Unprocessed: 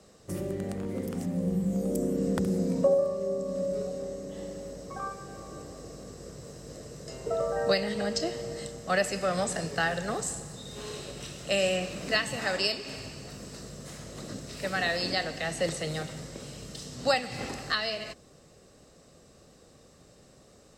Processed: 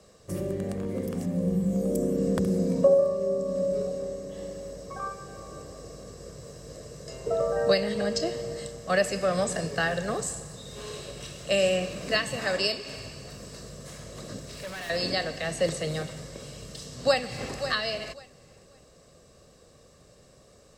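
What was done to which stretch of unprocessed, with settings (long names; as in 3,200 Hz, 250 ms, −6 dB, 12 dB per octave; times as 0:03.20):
0:14.38–0:14.90: gain into a clipping stage and back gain 36 dB
0:16.52–0:17.58: delay throw 540 ms, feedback 20%, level −10 dB
whole clip: dynamic equaliser 250 Hz, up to +4 dB, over −38 dBFS, Q 0.71; comb filter 1.8 ms, depth 31%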